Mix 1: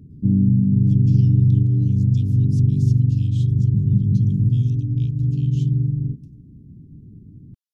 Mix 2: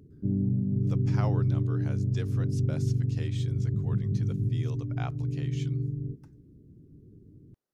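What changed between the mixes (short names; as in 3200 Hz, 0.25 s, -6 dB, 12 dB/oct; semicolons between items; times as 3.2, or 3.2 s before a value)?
speech: remove steep high-pass 2700 Hz 72 dB/oct; master: add resonant low shelf 300 Hz -9.5 dB, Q 1.5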